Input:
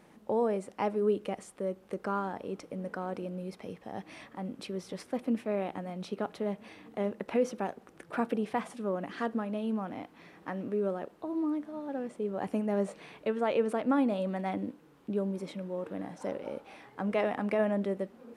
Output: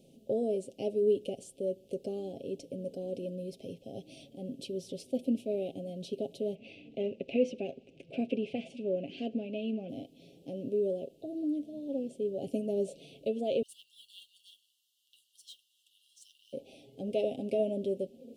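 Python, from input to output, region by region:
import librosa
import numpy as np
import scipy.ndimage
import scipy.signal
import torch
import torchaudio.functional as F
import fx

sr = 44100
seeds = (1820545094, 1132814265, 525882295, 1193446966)

y = fx.chain(x, sr, fx.lowpass(hz=4300.0, slope=12),
    fx.band_shelf(hz=2000.0, db=12.5, octaves=1.1), at=(6.55, 9.89))
y = fx.chain(y, sr, fx.brickwall_highpass(low_hz=2700.0),
    fx.mod_noise(seeds[0], snr_db=18), at=(13.62, 16.53))
y = scipy.signal.sosfilt(scipy.signal.ellip(3, 1.0, 40, [610.0, 2900.0], 'bandstop', fs=sr, output='sos'), y)
y = y + 0.49 * np.pad(y, (int(7.5 * sr / 1000.0), 0))[:len(y)]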